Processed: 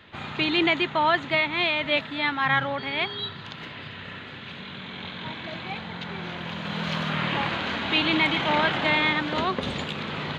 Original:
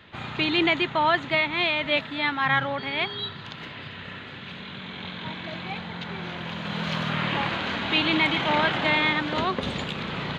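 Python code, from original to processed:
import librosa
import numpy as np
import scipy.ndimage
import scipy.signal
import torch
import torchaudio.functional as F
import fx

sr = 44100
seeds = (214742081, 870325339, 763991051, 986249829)

y = fx.hum_notches(x, sr, base_hz=60, count=3)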